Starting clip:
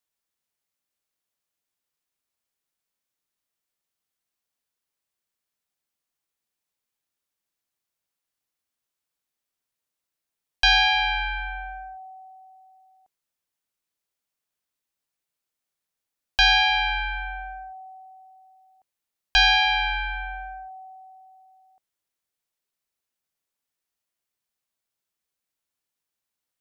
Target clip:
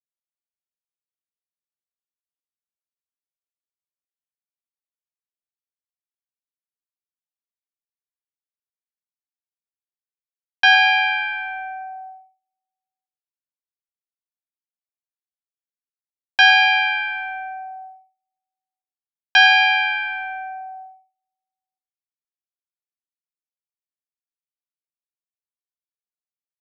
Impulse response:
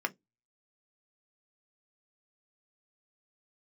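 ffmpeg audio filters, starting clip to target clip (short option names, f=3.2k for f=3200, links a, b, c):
-filter_complex "[0:a]asplit=2[a][b];[b]adelay=12,volume=-10.5dB[c];[a][c]amix=inputs=2:normalize=0,dynaudnorm=f=850:g=9:m=10dB,asetnsamples=n=441:p=0,asendcmd='11.81 highshelf g 2',highshelf=f=4.6k:g=-3,aecho=1:1:109|218|327:0.282|0.0733|0.0191,agate=range=-40dB:threshold=-36dB:ratio=16:detection=peak[d];[1:a]atrim=start_sample=2205[e];[d][e]afir=irnorm=-1:irlink=0,volume=-8.5dB"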